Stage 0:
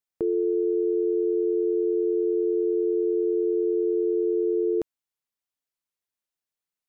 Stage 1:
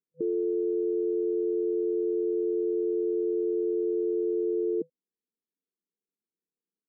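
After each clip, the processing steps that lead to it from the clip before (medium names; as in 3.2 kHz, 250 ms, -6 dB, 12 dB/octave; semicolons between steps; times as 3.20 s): FFT band-pass 160–500 Hz; peak limiter -29 dBFS, peak gain reduction 11 dB; trim +7 dB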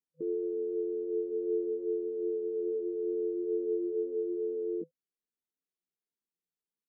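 chorus voices 6, 0.54 Hz, delay 15 ms, depth 3.8 ms; trim -3 dB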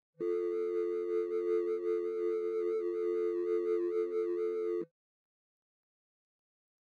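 median filter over 41 samples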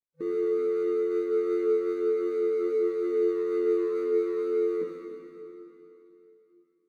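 reverberation RT60 3.2 s, pre-delay 6 ms, DRR -1 dB; trim +3.5 dB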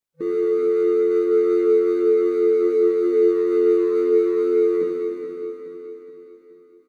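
feedback delay 423 ms, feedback 50%, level -10 dB; trim +6.5 dB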